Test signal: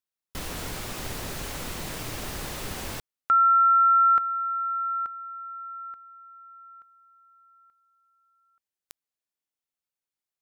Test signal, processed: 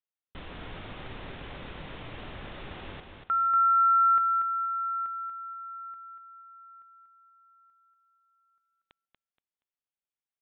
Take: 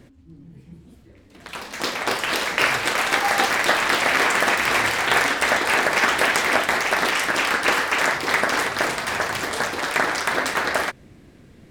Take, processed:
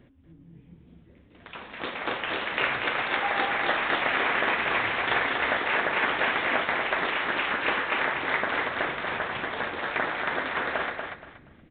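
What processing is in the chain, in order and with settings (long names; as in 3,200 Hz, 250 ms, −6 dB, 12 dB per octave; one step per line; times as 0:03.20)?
on a send: repeating echo 237 ms, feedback 25%, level −5.5 dB
on the sum: downsampling to 8,000 Hz
level −7 dB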